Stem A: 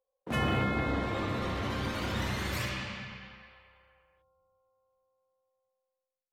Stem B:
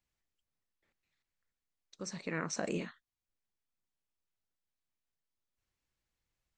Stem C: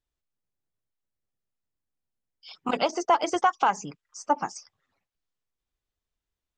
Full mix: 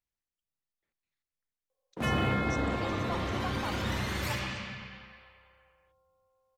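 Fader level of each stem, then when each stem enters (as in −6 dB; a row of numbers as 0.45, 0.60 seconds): +0.5, −8.0, −18.0 decibels; 1.70, 0.00, 0.00 seconds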